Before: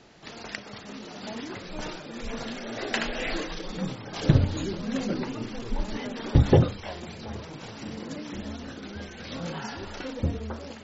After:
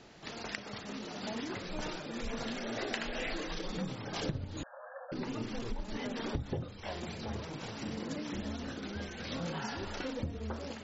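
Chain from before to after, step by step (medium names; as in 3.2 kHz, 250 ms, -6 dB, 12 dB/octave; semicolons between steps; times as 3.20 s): compression 16:1, threshold -31 dBFS, peak gain reduction 19 dB; 4.63–5.12 s: brick-wall FIR band-pass 500–1800 Hz; trim -1.5 dB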